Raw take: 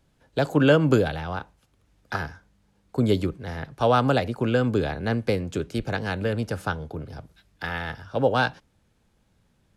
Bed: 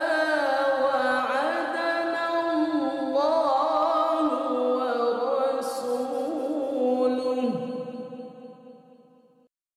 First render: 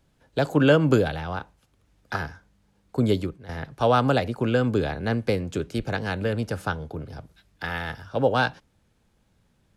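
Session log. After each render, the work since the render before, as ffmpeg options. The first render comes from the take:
-filter_complex "[0:a]asettb=1/sr,asplit=3[s0][s1][s2];[s0]atrim=end=7.694[s3];[s1]atrim=start=7.69:end=8.09,asetpts=PTS-STARTPTS,afade=t=in:d=0.004:c=qsin,afade=t=out:st=0.396:d=0.004:c=qsin,highshelf=f=9000:g=7.5[s4];[s2]atrim=start=8.086[s5];[s3][s4]acrossfade=d=0.004:c1=hsin:c2=qsin[s6];[s6][s5]acrossfade=d=0.004:c1=qsin:c2=hsin,asplit=2[s7][s8];[s7]atrim=end=3.49,asetpts=PTS-STARTPTS,afade=t=out:st=3.07:d=0.42:silence=0.298538[s9];[s8]atrim=start=3.49,asetpts=PTS-STARTPTS,afade=t=in:d=0.004:c=hsin:silence=0.298538[s10];[s9][s10]concat=n=2:v=0:a=1"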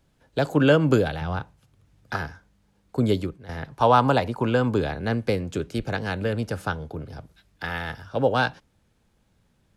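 -filter_complex "[0:a]asettb=1/sr,asplit=3[s0][s1][s2];[s0]atrim=end=1.214[s3];[s1]atrim=start=1.21:end=2.14,asetpts=PTS-STARTPTS,afade=t=in:d=0.004:c=qsin,afade=t=out:st=0.926:d=0.004:c=qsin,equalizer=f=120:w=1.5:g=10.5[s4];[s2]atrim=start=2.136[s5];[s3][s4]acrossfade=d=0.004:c1=hsin:c2=qsin[s6];[s6][s5]acrossfade=d=0.004:c1=qsin:c2=hsin,asettb=1/sr,asplit=3[s7][s8][s9];[s7]atrim=end=3.704[s10];[s8]atrim=start=3.7:end=4.82,asetpts=PTS-STARTPTS,afade=t=in:d=0.004:c=qsin,afade=t=out:st=1.116:d=0.004:c=qsin,equalizer=f=950:t=o:w=0.38:g=10.5[s11];[s9]atrim=start=4.816[s12];[s10][s11]acrossfade=d=0.004:c1=hsin:c2=qsin[s13];[s13][s12]acrossfade=d=0.004:c1=qsin:c2=hsin"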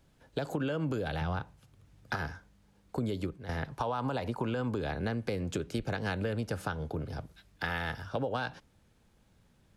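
-af "alimiter=limit=0.15:level=0:latency=1:release=124,acompressor=threshold=0.0316:ratio=4"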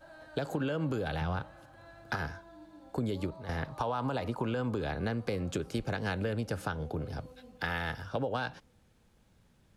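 -filter_complex "[1:a]volume=0.0376[s0];[0:a][s0]amix=inputs=2:normalize=0"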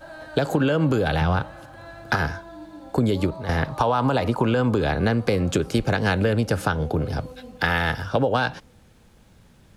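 -af "volume=3.98"

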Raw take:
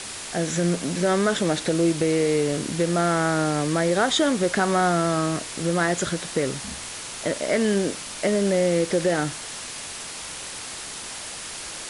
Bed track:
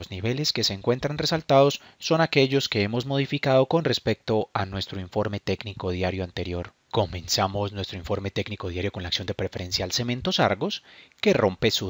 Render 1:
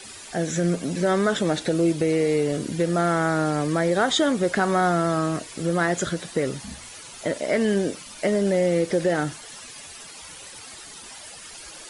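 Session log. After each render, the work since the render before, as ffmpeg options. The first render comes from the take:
-af "afftdn=nr=12:nf=-36"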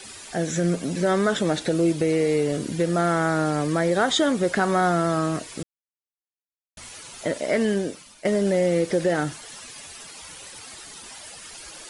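-filter_complex "[0:a]asplit=4[s0][s1][s2][s3];[s0]atrim=end=5.63,asetpts=PTS-STARTPTS,afade=t=out:st=5.626:d=0.004:c=hsin[s4];[s1]atrim=start=5.63:end=6.77,asetpts=PTS-STARTPTS,volume=0[s5];[s2]atrim=start=6.77:end=8.25,asetpts=PTS-STARTPTS,afade=t=in:d=0.004:c=hsin,afade=t=out:st=0.84:d=0.64:silence=0.223872[s6];[s3]atrim=start=8.25,asetpts=PTS-STARTPTS,afade=t=in:d=0.004:c=hsin:silence=0.223872[s7];[s4][s5][s6][s7]concat=n=4:v=0:a=1"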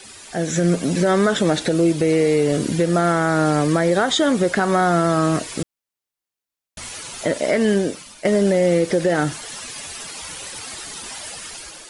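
-af "dynaudnorm=f=150:g=7:m=2.51,alimiter=limit=0.376:level=0:latency=1:release=229"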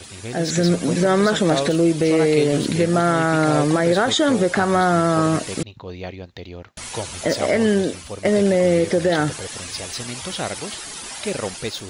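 -filter_complex "[1:a]volume=0.501[s0];[0:a][s0]amix=inputs=2:normalize=0"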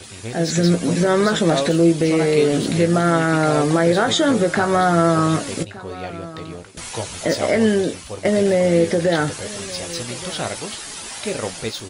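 -filter_complex "[0:a]asplit=2[s0][s1];[s1]adelay=18,volume=0.376[s2];[s0][s2]amix=inputs=2:normalize=0,aecho=1:1:1173:0.126"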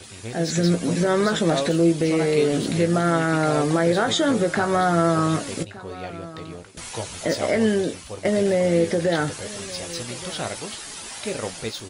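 -af "volume=0.668"

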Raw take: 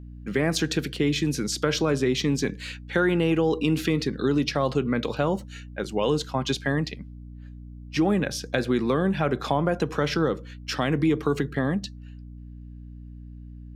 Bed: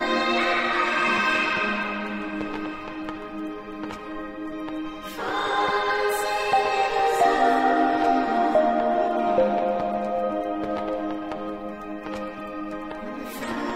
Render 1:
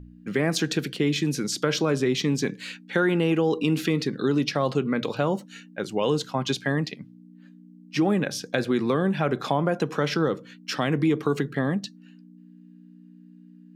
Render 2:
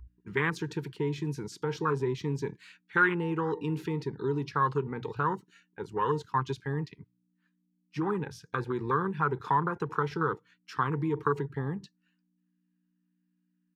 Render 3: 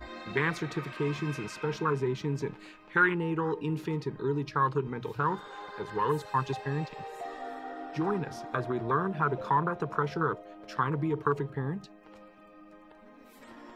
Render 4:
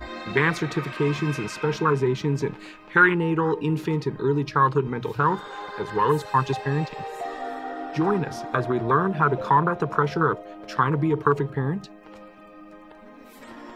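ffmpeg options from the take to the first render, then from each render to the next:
-af "bandreject=f=60:t=h:w=4,bandreject=f=120:t=h:w=4"
-af "afwtdn=0.0447,firequalizer=gain_entry='entry(110,0);entry(230,-15);entry(430,-3);entry(610,-26);entry(940,6);entry(3200,-1)':delay=0.05:min_phase=1"
-filter_complex "[1:a]volume=0.0944[s0];[0:a][s0]amix=inputs=2:normalize=0"
-af "volume=2.37"

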